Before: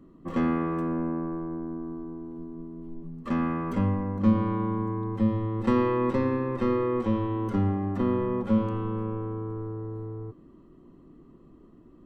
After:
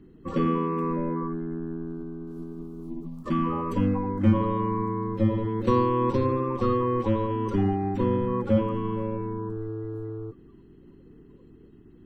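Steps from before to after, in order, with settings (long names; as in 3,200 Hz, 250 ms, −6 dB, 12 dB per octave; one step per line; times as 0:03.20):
spectral magnitudes quantised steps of 30 dB
0:02.27–0:03.25: high-shelf EQ 3,000 Hz +11.5 dB
level +2 dB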